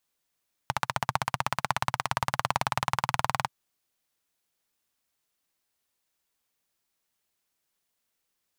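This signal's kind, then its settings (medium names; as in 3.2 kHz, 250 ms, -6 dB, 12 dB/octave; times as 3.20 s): single-cylinder engine model, changing speed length 2.78 s, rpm 1800, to 2400, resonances 130/910 Hz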